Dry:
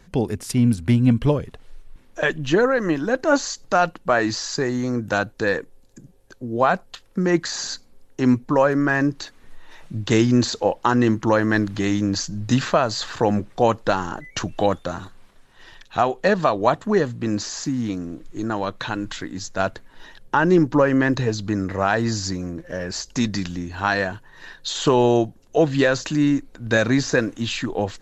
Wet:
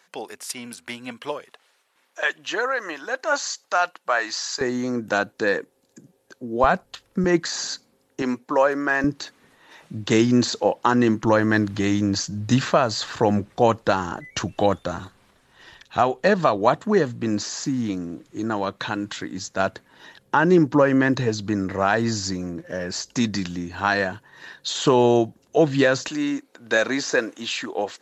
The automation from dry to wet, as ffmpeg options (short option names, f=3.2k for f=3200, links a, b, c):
-af "asetnsamples=n=441:p=0,asendcmd='4.61 highpass f 200;6.64 highpass f 58;7.24 highpass f 150;8.22 highpass f 400;9.04 highpass f 140;11.24 highpass f 53;16.57 highpass f 110;26.08 highpass f 380',highpass=780"